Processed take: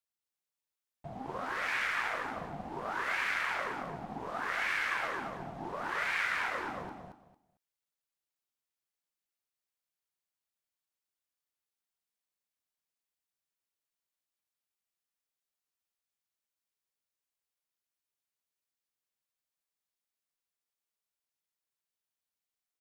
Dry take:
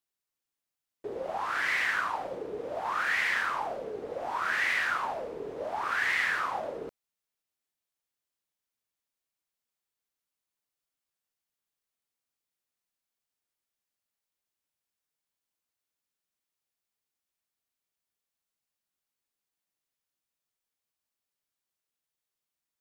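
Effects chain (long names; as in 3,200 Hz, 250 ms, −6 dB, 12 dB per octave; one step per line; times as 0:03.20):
low-shelf EQ 190 Hz −7 dB
ring modulation 270 Hz
on a send: repeating echo 226 ms, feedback 21%, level −4 dB
on the sum: level −2.5 dB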